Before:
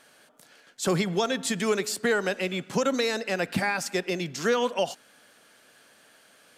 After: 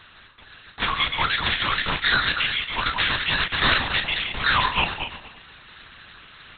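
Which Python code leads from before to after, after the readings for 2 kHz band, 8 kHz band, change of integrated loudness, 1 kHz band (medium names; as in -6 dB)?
+9.0 dB, under -40 dB, +5.0 dB, +7.5 dB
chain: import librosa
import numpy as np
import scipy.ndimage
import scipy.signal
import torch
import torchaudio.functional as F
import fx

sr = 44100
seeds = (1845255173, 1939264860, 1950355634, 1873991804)

y = fx.reverse_delay_fb(x, sr, ms=120, feedback_pct=45, wet_db=-5)
y = scipy.signal.sosfilt(scipy.signal.butter(6, 900.0, 'highpass', fs=sr, output='sos'), y)
y = fx.dereverb_blind(y, sr, rt60_s=0.55)
y = fx.tilt_eq(y, sr, slope=-1.5)
y = fx.rider(y, sr, range_db=10, speed_s=2.0)
y = fx.doubler(y, sr, ms=37.0, db=-8)
y = y + 10.0 ** (-21.0 / 20.0) * np.pad(y, (int(338 * sr / 1000.0), 0))[:len(y)]
y = (np.kron(y[::8], np.eye(8)[0]) * 8)[:len(y)]
y = fx.lpc_vocoder(y, sr, seeds[0], excitation='whisper', order=8)
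y = y * 10.0 ** (8.5 / 20.0)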